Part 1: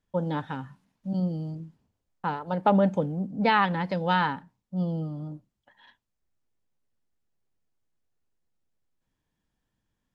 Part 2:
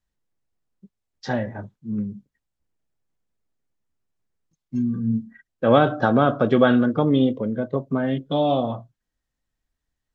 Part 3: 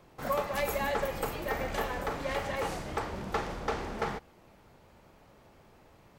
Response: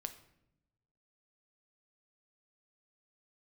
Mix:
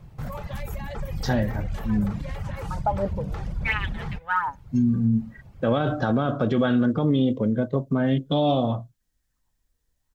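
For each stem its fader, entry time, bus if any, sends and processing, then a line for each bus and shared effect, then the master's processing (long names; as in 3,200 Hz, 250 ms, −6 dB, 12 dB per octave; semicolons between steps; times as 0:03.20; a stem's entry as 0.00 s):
−1.0 dB, 0.20 s, no send, flat-topped bell 1,500 Hz +9 dB; LFO wah 0.6 Hz 450–3,500 Hz, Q 3.8; phase shifter 1.4 Hz, delay 2.6 ms, feedback 56%; automatic ducking −19 dB, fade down 0.35 s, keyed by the second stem
−1.0 dB, 0.00 s, no send, high-shelf EQ 4,600 Hz +11.5 dB
0.0 dB, 0.00 s, no send, reverb reduction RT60 0.84 s; low shelf with overshoot 210 Hz +10.5 dB, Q 1.5; brickwall limiter −29 dBFS, peak gain reduction 11.5 dB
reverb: not used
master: low-shelf EQ 190 Hz +9 dB; brickwall limiter −13.5 dBFS, peak gain reduction 11 dB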